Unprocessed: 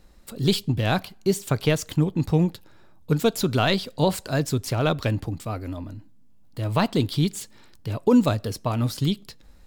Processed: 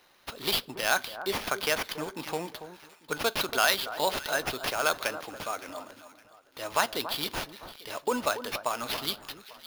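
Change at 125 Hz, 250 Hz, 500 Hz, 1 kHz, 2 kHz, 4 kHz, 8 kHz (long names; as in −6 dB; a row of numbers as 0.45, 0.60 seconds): −24.5, −17.0, −6.5, −0.5, +3.0, +0.5, 0.0 decibels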